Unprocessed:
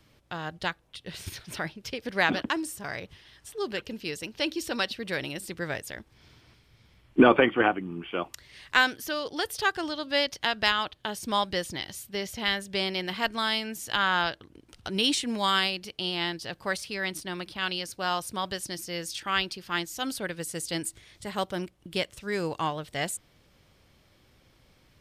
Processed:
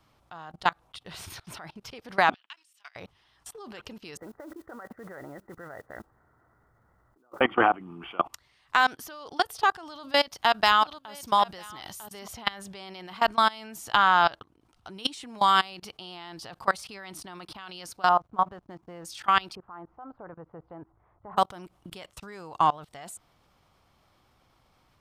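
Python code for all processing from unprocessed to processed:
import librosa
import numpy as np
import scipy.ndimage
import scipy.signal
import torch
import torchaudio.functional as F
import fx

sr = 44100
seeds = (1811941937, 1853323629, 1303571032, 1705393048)

y = fx.chain(x, sr, fx.highpass_res(hz=2800.0, q=2.1),
    fx.high_shelf(hz=4400.0, db=-11.0),
    fx.level_steps(step_db=16), at=(2.34, 2.96))
y = fx.chain(y, sr, fx.over_compress(threshold_db=-30.0, ratio=-0.5),
    fx.cheby_ripple(hz=2000.0, ripple_db=6),
    fx.mod_noise(seeds[0], snr_db=22), at=(4.17, 7.41))
y = fx.chain(y, sr, fx.high_shelf(hz=9500.0, db=11.0),
    fx.echo_single(ms=949, db=-11.5), at=(9.86, 12.28))
y = fx.chain(y, sr, fx.lowpass(hz=1300.0, slope=12),
    fx.backlash(play_db=-51.5),
    fx.quant_float(bits=6), at=(18.09, 19.05))
y = fx.chain(y, sr, fx.lowpass(hz=1200.0, slope=24),
    fx.peak_eq(hz=230.0, db=-6.0, octaves=0.94), at=(19.55, 21.37))
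y = fx.band_shelf(y, sr, hz=960.0, db=9.0, octaves=1.2)
y = fx.level_steps(y, sr, step_db=23)
y = y * librosa.db_to_amplitude(3.5)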